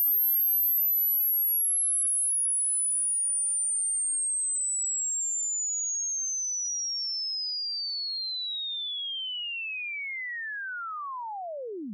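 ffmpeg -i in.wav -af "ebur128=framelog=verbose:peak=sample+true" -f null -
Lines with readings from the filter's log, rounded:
Integrated loudness:
  I:         -25.5 LUFS
  Threshold: -35.8 LUFS
Loudness range:
  LRA:         8.6 LU
  Threshold: -46.1 LUFS
  LRA low:   -31.3 LUFS
  LRA high:  -22.7 LUFS
Sample peak:
  Peak:      -21.1 dBFS
True peak:
  Peak:      -20.1 dBFS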